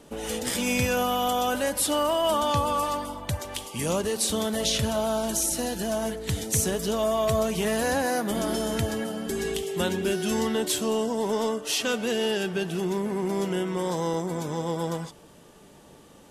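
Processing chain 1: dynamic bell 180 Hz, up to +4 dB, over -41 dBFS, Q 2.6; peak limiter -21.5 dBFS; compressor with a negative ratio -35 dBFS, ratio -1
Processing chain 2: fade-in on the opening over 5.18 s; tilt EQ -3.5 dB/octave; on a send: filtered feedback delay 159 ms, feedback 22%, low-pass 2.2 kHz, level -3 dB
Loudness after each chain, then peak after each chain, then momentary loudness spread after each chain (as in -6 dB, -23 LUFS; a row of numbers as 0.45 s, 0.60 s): -35.0 LUFS, -21.0 LUFS; -16.5 dBFS, -5.0 dBFS; 5 LU, 13 LU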